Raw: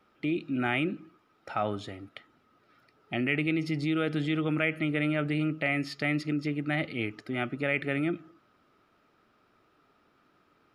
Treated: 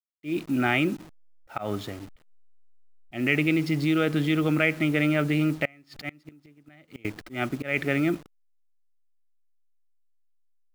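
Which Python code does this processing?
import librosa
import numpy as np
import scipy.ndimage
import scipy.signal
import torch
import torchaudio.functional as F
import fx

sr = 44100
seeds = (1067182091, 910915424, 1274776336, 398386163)

y = fx.delta_hold(x, sr, step_db=-46.0)
y = fx.auto_swell(y, sr, attack_ms=156.0)
y = fx.gate_flip(y, sr, shuts_db=-24.0, range_db=-29, at=(5.65, 7.05))
y = F.gain(torch.from_numpy(y), 5.0).numpy()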